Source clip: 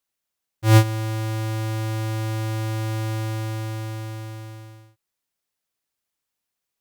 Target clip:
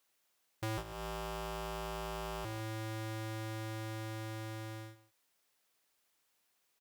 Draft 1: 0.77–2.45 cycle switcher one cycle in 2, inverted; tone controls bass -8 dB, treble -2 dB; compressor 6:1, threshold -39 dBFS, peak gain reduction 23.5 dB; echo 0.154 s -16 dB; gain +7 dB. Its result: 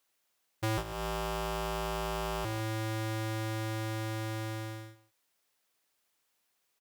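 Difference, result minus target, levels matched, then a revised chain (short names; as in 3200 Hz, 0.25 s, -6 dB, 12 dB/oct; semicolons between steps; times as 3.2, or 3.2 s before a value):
compressor: peak gain reduction -6 dB
0.77–2.45 cycle switcher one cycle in 2, inverted; tone controls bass -8 dB, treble -2 dB; compressor 6:1, threshold -46.5 dBFS, peak gain reduction 29.5 dB; echo 0.154 s -16 dB; gain +7 dB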